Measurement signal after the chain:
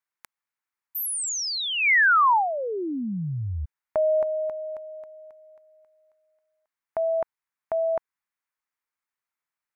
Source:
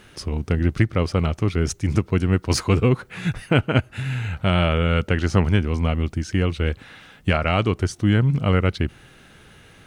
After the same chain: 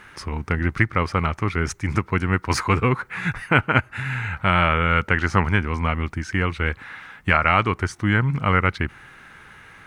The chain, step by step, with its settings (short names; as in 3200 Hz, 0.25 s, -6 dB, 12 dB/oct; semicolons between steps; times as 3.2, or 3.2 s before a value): band shelf 1400 Hz +11 dB; gain -3 dB